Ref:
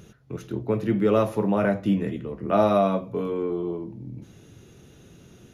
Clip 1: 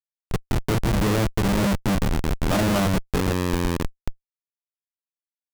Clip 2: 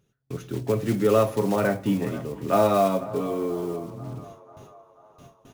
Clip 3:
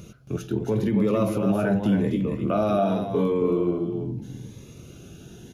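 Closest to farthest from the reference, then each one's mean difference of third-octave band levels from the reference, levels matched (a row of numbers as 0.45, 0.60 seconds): 3, 2, 1; 4.5, 7.0, 14.0 decibels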